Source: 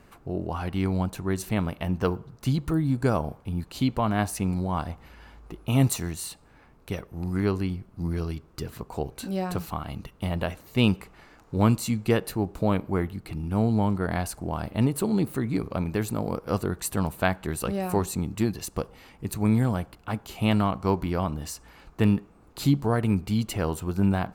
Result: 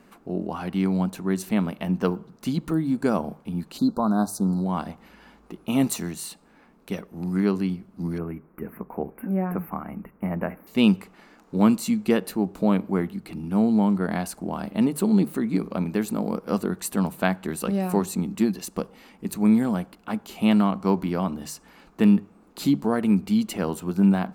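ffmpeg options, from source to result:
-filter_complex "[0:a]asplit=3[a][b][c];[a]afade=t=out:st=3.77:d=0.02[d];[b]asuperstop=centerf=2400:order=20:qfactor=1.1,afade=t=in:st=3.77:d=0.02,afade=t=out:st=4.64:d=0.02[e];[c]afade=t=in:st=4.64:d=0.02[f];[d][e][f]amix=inputs=3:normalize=0,asettb=1/sr,asplit=3[g][h][i];[g]atrim=end=8.184[j];[h]atrim=start=8.18:end=10.67,asetpts=PTS-STARTPTS,afade=t=in:d=0.004:c=qsin,afade=t=out:st=2.486:d=0.004:c=qsin,asuperstop=centerf=5400:order=12:qfactor=0.63[k];[i]atrim=start=10.666[l];[j][k]acrossfade=d=0.004:c1=hsin:c2=qsin[m];[m][l]acrossfade=d=0.004:c1=qsin:c2=hsin,lowshelf=f=150:t=q:w=3:g=-8.5,bandreject=f=50:t=h:w=6,bandreject=f=100:t=h:w=6,bandreject=f=150:t=h:w=6"

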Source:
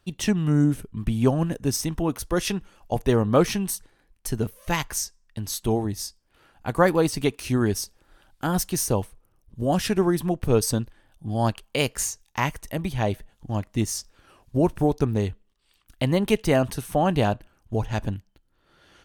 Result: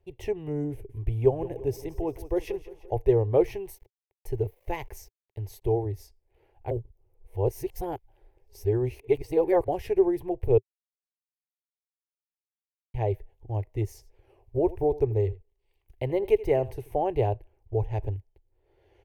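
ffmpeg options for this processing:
-filter_complex "[0:a]asettb=1/sr,asplit=3[a][b][c];[a]atrim=end=0.724[d];[b]atrim=start=0.72:end=2.94,asetpts=PTS-STARTPTS,afade=t=in:d=0.004:c=qsin,afade=t=out:st=2.216:d=0.004:c=qsin,aecho=1:1:172|344|516|688|860:0.168|0.0873|0.0454|0.0236|0.0123,atrim=end_sample=97902[e];[c]atrim=start=2.936[f];[d][e]acrossfade=d=0.004:c1=hsin:c2=qsin[g];[g][f]acrossfade=d=0.004:c1=qsin:c2=hsin,asettb=1/sr,asplit=3[h][i][j];[h]atrim=end=3.474[k];[i]atrim=start=3.47:end=5.62,asetpts=PTS-STARTPTS,afade=t=in:d=0.004:c=qsin,afade=t=out:st=2.146:d=0.004:c=qsin,aeval=exprs='val(0)*gte(abs(val(0)),0.00473)':c=same[l];[j]atrim=start=5.616[m];[k][l]acrossfade=d=0.004:c1=hsin:c2=qsin[n];[n][m]acrossfade=d=0.004:c1=qsin:c2=hsin,asettb=1/sr,asplit=3[o][p][q];[o]atrim=end=13.934[r];[p]atrim=start=13.93:end=16.96,asetpts=PTS-STARTPTS,afade=t=in:d=0.004:c=qsin,afade=t=out:st=3.026:d=0.004:c=qsin,aecho=1:1:82:0.112,atrim=end_sample=133623[s];[q]atrim=start=16.956[t];[r][s]acrossfade=d=0.004:c1=hsin:c2=qsin[u];[u][t]acrossfade=d=0.004:c1=qsin:c2=hsin,asplit=5[v][w][x][y][z];[v]atrim=end=6.712[aa];[w]atrim=start=6.708:end=9.682,asetpts=PTS-STARTPTS,areverse[ab];[x]atrim=start=9.678:end=10.58,asetpts=PTS-STARTPTS,afade=t=out:st=0.898:d=0.004:c=hsin[ac];[y]atrim=start=10.58:end=12.94,asetpts=PTS-STARTPTS,volume=0[ad];[z]atrim=start=12.94,asetpts=PTS-STARTPTS,afade=t=in:d=0.004:c=hsin[ae];[aa][ab]acrossfade=d=0.004:c1=hsin:c2=hsin[af];[ac][ad][ae]concat=n=3:v=0:a=1[ag];[af][ag]acrossfade=d=0.004:c1=hsin:c2=hsin,firequalizer=gain_entry='entry(110,0);entry(190,-28);entry(390,4);entry(580,-5);entry(840,-4);entry(1300,-26);entry(2100,-8);entry(3500,-21);entry(8600,-24);entry(13000,-13)':delay=0.05:min_phase=1"

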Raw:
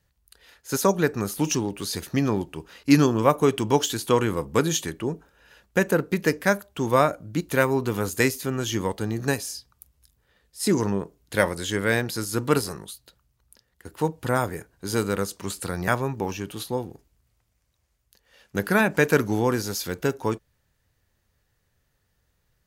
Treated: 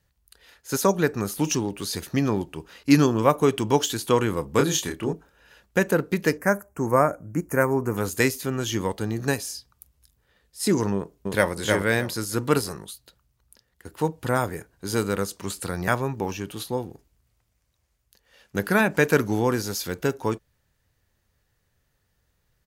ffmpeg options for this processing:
-filter_complex "[0:a]asettb=1/sr,asplit=3[a][b][c];[a]atrim=end=4.564[d];[b]atrim=start=4.56:end=5.13,asetpts=PTS-STARTPTS,afade=t=in:d=0.004:c=qsin,afade=t=out:st=0.566:d=0.004:c=qsin,asplit=2[e][f];[f]adelay=28,volume=-4.5dB[g];[e][g]amix=inputs=2:normalize=0,atrim=end_sample=25137[h];[c]atrim=start=5.126[i];[d][h]acrossfade=d=0.004:c1=hsin:c2=qsin[j];[j][i]acrossfade=d=0.004:c1=qsin:c2=hsin,asplit=3[k][l][m];[k]afade=t=out:st=6.37:d=0.02[n];[l]asuperstop=centerf=3600:order=4:qfactor=0.79,afade=t=in:st=6.37:d=0.02,afade=t=out:st=7.96:d=0.02[o];[m]afade=t=in:st=7.96:d=0.02[p];[n][o][p]amix=inputs=3:normalize=0,asplit=2[q][r];[r]afade=t=in:st=10.94:d=0.01,afade=t=out:st=11.51:d=0.01,aecho=0:1:310|620|930:0.749894|0.149979|0.0299958[s];[q][s]amix=inputs=2:normalize=0"

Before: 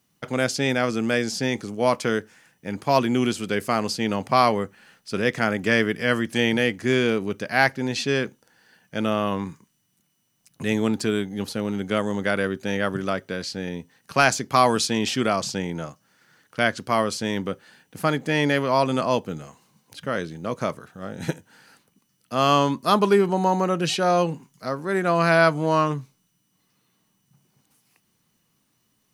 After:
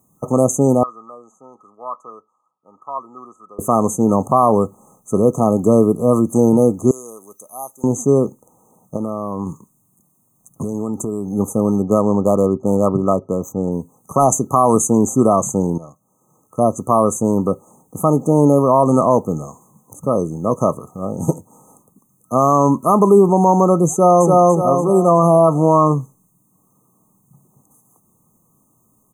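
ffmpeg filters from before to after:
-filter_complex "[0:a]asettb=1/sr,asplit=3[a][b][c];[a]atrim=end=0.834[d];[b]atrim=start=0.83:end=3.59,asetpts=PTS-STARTPTS,afade=t=in:d=0.004:c=qsin,afade=t=out:st=2.756:d=0.004:c=qsin,bandpass=f=1.3k:t=q:w=8.6[e];[c]atrim=start=3.586[f];[d][e]acrossfade=d=0.004:c1=hsin:c2=qsin[g];[g][f]acrossfade=d=0.004:c1=qsin:c2=hsin,asettb=1/sr,asplit=3[h][i][j];[h]atrim=end=6.914[k];[i]atrim=start=6.91:end=7.84,asetpts=PTS-STARTPTS,afade=t=in:d=0.004:c=qsin,afade=t=out:st=0.926:d=0.004:c=qsin,aderivative[l];[j]atrim=start=7.836[m];[k][l]acrossfade=d=0.004:c1=hsin:c2=qsin[n];[n][m]acrossfade=d=0.004:c1=qsin:c2=hsin,asettb=1/sr,asplit=3[o][p][q];[o]atrim=end=8.964[r];[p]atrim=start=8.96:end=11.31,asetpts=PTS-STARTPTS,afade=t=in:d=0.004:c=qsin,afade=t=out:st=2.346:d=0.004:c=qsin,acompressor=threshold=-29dB:ratio=6:attack=3.2:release=140:knee=1:detection=peak[s];[q]atrim=start=11.306[t];[r][s]acrossfade=d=0.004:c1=hsin:c2=qsin[u];[u][t]acrossfade=d=0.004:c1=qsin:c2=hsin,asettb=1/sr,asplit=3[v][w][x];[v]atrim=end=11.824[y];[w]atrim=start=11.82:end=13.72,asetpts=PTS-STARTPTS,afade=t=in:d=0.004:c=qsin,afade=t=out:st=1.896:d=0.004:c=qsin,adynamicsmooth=sensitivity=5:basefreq=2.1k[z];[x]atrim=start=13.716[aa];[y][z]acrossfade=d=0.004:c1=hsin:c2=qsin[ab];[ab][aa]acrossfade=d=0.004:c1=qsin:c2=hsin,asplit=2[ac][ad];[ad]afade=t=in:st=23.91:d=0.01,afade=t=out:st=24.32:d=0.01,aecho=0:1:290|580|870|1160|1450|1740:0.841395|0.378628|0.170383|0.0766721|0.0345025|0.0155261[ae];[ac][ae]amix=inputs=2:normalize=0,asplit=2[af][ag];[af]atrim=end=15.78,asetpts=PTS-STARTPTS,afade=t=out:st=15.776:d=0.004:c=hsin:silence=0.149624[ah];[ag]atrim=start=15.78,asetpts=PTS-STARTPTS,afade=t=in:d=1.03:silence=0.149624[ai];[ah][ai]concat=n=2:v=0:a=1,afftfilt=real='re*(1-between(b*sr/4096,1300,6100))':imag='im*(1-between(b*sr/4096,1300,6100))':win_size=4096:overlap=0.75,equalizer=f=1.5k:t=o:w=0.25:g=-7.5,alimiter=level_in=11.5dB:limit=-1dB:release=50:level=0:latency=1,volume=-1dB"

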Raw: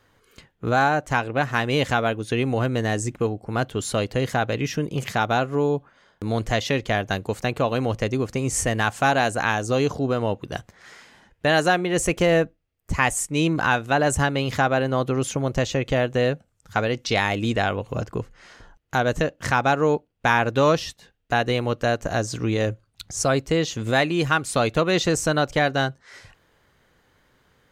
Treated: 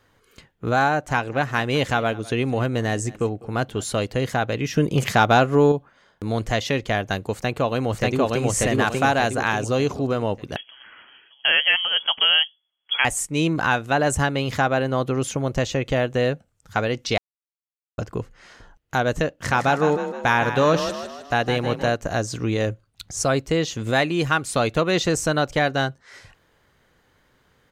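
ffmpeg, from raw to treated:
-filter_complex "[0:a]asettb=1/sr,asplit=3[a][b][c];[a]atrim=end=0.884[d];[b]atrim=start=0.88:end=4.06,asetpts=PTS-STARTPTS,afade=t=in:d=0.004:c=qsin,afade=t=out:st=3.176:d=0.004:c=qsin,aecho=1:1:203:0.0891,atrim=end_sample=140238[e];[c]atrim=start=4.056[f];[d][e]acrossfade=d=0.004:c1=hsin:c2=qsin[g];[g][f]acrossfade=d=0.004:c1=qsin:c2=hsin,asettb=1/sr,asplit=3[h][i][j];[h]atrim=end=4.764[k];[i]atrim=start=4.76:end=5.72,asetpts=PTS-STARTPTS,afade=t=in:d=0.004:c=qsin,afade=t=out:st=0.956:d=0.004:c=qsin,acontrast=57[l];[j]atrim=start=5.716[m];[k][l]acrossfade=d=0.004:c1=hsin:c2=qsin[n];[n][m]acrossfade=d=0.004:c1=qsin:c2=hsin,asplit=2[o][p];[p]afade=t=in:st=7.33:d=0.01,afade=t=out:st=8.46:d=0.01,aecho=0:1:590|1180|1770|2360|2950|3540:1|0.4|0.16|0.064|0.0256|0.01024[q];[o][q]amix=inputs=2:normalize=0,asettb=1/sr,asplit=3[r][s][t];[r]atrim=end=10.564[u];[s]atrim=start=10.56:end=13.05,asetpts=PTS-STARTPTS,afade=t=in:d=0.004:c=qsin,afade=t=out:st=2.486:d=0.004:c=qsin,lowpass=f=2.9k:t=q:w=0.5098,lowpass=f=2.9k:t=q:w=0.6013,lowpass=f=2.9k:t=q:w=0.9,lowpass=f=2.9k:t=q:w=2.563,afreqshift=-3400[v];[t]atrim=start=13.046[w];[u][v]acrossfade=d=0.004:c1=hsin:c2=qsin[x];[x][w]acrossfade=d=0.004:c1=qsin:c2=hsin,asplit=3[y][z][aa];[y]afade=t=out:st=19.49:d=0.02[ab];[z]asplit=7[ac][ad][ae][af][ag][ah][ai];[ad]adelay=156,afreqshift=32,volume=-9dB[aj];[ae]adelay=312,afreqshift=64,volume=-15.2dB[ak];[af]adelay=468,afreqshift=96,volume=-21.4dB[al];[ag]adelay=624,afreqshift=128,volume=-27.6dB[am];[ah]adelay=780,afreqshift=160,volume=-33.8dB[an];[ai]adelay=936,afreqshift=192,volume=-40dB[ao];[ac][aj][ak][al][am][an][ao]amix=inputs=7:normalize=0,afade=t=in:st=19.49:d=0.02,afade=t=out:st=21.94:d=0.02[ap];[aa]afade=t=in:st=21.94:d=0.02[aq];[ab][ap][aq]amix=inputs=3:normalize=0,asplit=3[ar][as][at];[ar]atrim=end=17.18,asetpts=PTS-STARTPTS,afade=t=out:st=17.176:d=0.004:c=hsin[au];[as]atrim=start=17.18:end=17.98,asetpts=PTS-STARTPTS,volume=0[av];[at]atrim=start=17.98,asetpts=PTS-STARTPTS,afade=t=in:d=0.004:c=hsin[aw];[au][av][aw]concat=n=3:v=0:a=1"

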